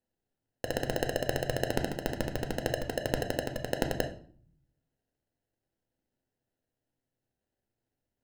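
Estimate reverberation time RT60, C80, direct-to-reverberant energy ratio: 0.55 s, 15.0 dB, 5.0 dB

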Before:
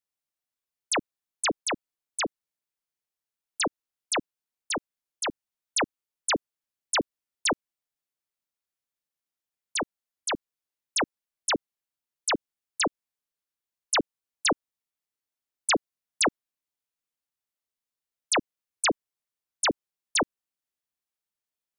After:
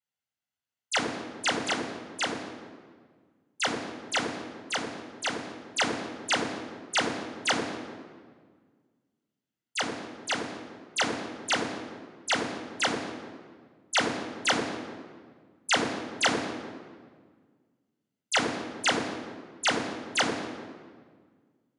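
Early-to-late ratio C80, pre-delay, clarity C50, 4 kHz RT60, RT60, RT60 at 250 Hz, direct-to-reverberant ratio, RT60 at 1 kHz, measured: 7.0 dB, 3 ms, 5.5 dB, 1.1 s, 1.7 s, 2.1 s, 0.5 dB, 1.6 s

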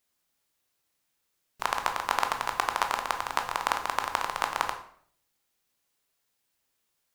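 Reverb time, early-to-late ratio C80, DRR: 0.60 s, 13.0 dB, 4.5 dB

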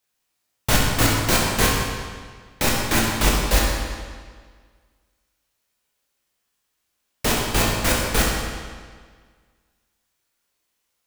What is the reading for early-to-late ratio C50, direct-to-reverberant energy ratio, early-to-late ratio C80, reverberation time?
0.0 dB, -4.0 dB, 2.0 dB, 1.7 s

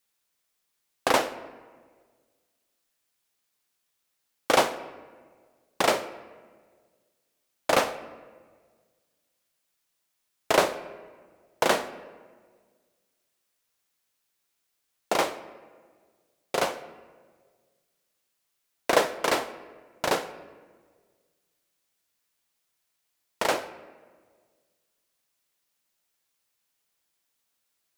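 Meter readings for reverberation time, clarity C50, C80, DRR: 1.6 s, 14.0 dB, 15.5 dB, 12.0 dB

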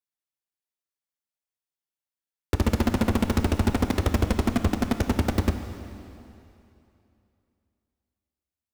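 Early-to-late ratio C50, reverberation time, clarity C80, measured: 8.5 dB, 2.8 s, 9.0 dB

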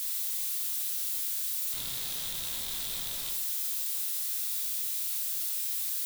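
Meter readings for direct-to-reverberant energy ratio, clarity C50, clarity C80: 1.5 dB, 7.0 dB, 11.0 dB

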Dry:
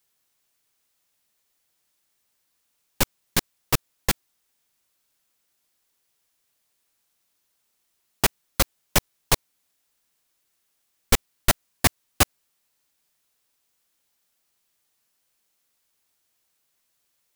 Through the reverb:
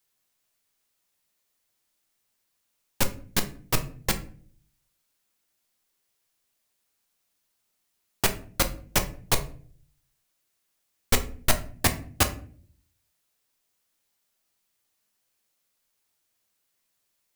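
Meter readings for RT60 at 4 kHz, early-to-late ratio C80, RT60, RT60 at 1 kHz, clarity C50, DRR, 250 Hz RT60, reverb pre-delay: 0.30 s, 18.5 dB, 0.50 s, 0.40 s, 14.0 dB, 6.5 dB, 0.75 s, 9 ms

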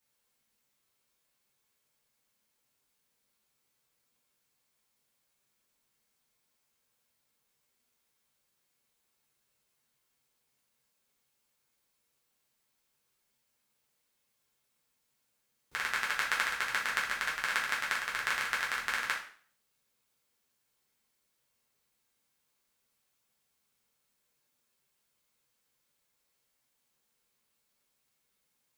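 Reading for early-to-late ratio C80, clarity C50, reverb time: 12.0 dB, 6.5 dB, 0.50 s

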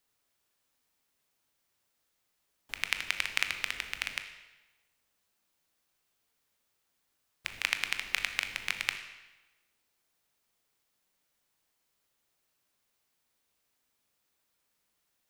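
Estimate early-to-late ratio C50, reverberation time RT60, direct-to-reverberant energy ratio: 9.0 dB, 1.1 s, 7.0 dB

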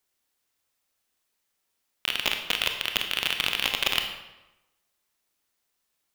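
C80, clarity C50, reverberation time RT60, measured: 9.0 dB, 6.5 dB, 1.0 s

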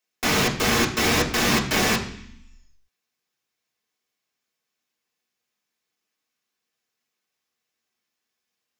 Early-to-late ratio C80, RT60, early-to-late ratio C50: 13.0 dB, 0.65 s, 10.0 dB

